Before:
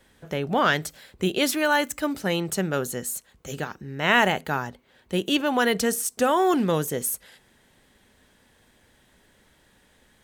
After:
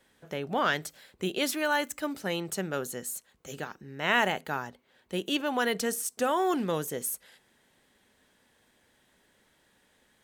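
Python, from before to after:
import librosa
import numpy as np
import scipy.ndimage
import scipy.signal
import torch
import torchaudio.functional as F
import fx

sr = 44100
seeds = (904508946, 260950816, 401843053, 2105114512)

y = fx.low_shelf(x, sr, hz=110.0, db=-11.0)
y = y * librosa.db_to_amplitude(-5.5)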